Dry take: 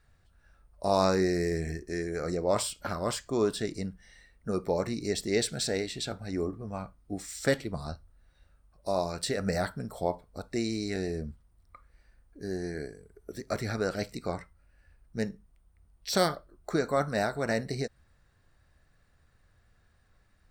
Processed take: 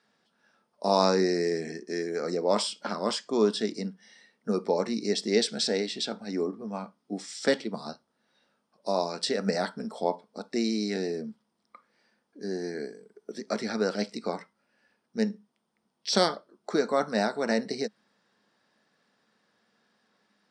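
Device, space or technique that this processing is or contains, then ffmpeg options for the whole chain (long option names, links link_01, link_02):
television speaker: -af "highpass=frequency=210:width=0.5412,highpass=frequency=210:width=1.3066,equalizer=frequency=210:width_type=q:width=4:gain=10,equalizer=frequency=450:width_type=q:width=4:gain=4,equalizer=frequency=910:width_type=q:width=4:gain=5,equalizer=frequency=3300:width_type=q:width=4:gain=6,equalizer=frequency=5100:width_type=q:width=4:gain=8,equalizer=frequency=7400:width_type=q:width=4:gain=-3,lowpass=frequency=8500:width=0.5412,lowpass=frequency=8500:width=1.3066"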